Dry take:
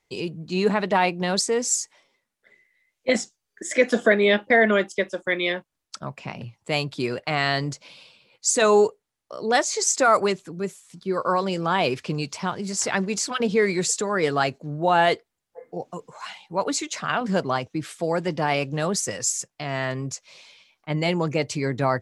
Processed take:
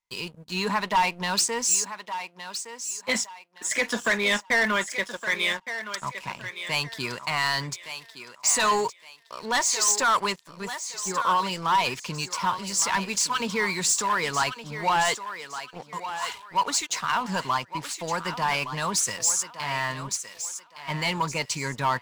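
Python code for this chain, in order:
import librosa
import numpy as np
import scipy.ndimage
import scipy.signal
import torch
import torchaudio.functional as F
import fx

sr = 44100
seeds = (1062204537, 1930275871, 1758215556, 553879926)

p1 = fx.tone_stack(x, sr, knobs='10-0-10')
p2 = fx.small_body(p1, sr, hz=(270.0, 960.0), ring_ms=25, db=16)
p3 = fx.leveller(p2, sr, passes=3)
p4 = p3 + fx.echo_thinned(p3, sr, ms=1165, feedback_pct=29, hz=410.0, wet_db=-10.0, dry=0)
y = p4 * librosa.db_to_amplitude(-6.5)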